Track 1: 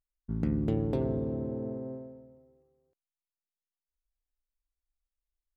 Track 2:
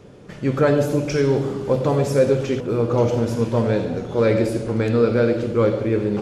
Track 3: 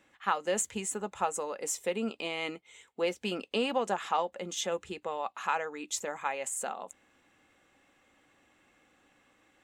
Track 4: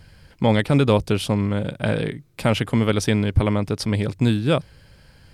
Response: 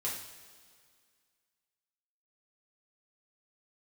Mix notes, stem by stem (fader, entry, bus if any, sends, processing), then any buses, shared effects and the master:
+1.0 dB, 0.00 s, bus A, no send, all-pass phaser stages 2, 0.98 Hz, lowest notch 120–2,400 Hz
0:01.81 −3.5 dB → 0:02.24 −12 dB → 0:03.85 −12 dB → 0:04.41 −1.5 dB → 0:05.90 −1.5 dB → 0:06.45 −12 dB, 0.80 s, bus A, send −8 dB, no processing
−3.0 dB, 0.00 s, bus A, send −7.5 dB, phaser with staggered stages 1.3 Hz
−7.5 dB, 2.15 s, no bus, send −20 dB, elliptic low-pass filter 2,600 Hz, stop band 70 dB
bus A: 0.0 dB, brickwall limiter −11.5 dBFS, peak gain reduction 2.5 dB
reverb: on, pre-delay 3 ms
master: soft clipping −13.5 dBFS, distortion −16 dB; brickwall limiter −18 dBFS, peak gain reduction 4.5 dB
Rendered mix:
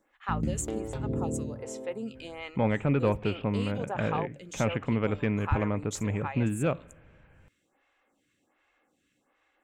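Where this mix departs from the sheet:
stem 2: muted
stem 3: send off
master: missing brickwall limiter −18 dBFS, peak gain reduction 4.5 dB

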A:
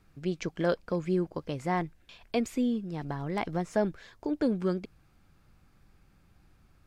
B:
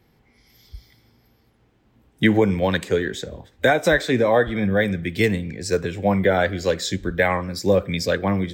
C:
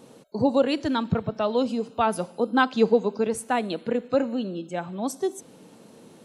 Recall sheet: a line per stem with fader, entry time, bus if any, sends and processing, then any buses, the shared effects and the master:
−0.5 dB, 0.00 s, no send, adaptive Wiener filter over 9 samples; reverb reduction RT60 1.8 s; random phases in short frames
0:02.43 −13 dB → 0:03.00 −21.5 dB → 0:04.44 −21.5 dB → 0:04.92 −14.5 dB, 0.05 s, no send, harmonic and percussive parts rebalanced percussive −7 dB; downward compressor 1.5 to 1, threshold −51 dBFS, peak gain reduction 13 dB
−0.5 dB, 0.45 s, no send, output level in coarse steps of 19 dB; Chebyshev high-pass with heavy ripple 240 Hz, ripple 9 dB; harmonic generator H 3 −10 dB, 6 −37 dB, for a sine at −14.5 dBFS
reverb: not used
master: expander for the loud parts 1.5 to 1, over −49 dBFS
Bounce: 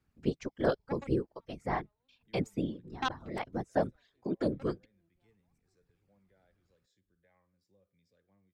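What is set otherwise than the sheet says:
stem A: missing adaptive Wiener filter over 9 samples
stem B −13.0 dB → −23.0 dB

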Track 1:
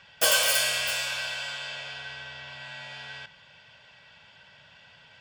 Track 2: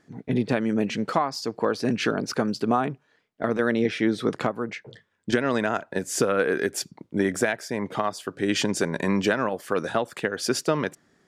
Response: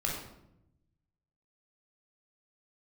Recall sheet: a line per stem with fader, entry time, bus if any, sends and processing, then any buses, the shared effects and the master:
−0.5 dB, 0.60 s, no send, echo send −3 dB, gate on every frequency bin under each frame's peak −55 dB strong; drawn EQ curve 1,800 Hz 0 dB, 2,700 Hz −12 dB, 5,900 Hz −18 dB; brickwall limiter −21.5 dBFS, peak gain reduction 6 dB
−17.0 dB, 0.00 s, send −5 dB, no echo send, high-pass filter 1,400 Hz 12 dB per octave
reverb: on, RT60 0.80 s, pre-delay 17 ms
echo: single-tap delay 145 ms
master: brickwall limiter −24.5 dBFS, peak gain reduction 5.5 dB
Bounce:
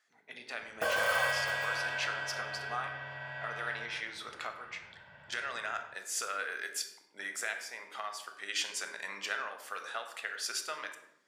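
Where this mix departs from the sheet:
stem 2 −17.0 dB → −10.0 dB
master: missing brickwall limiter −24.5 dBFS, peak gain reduction 5.5 dB

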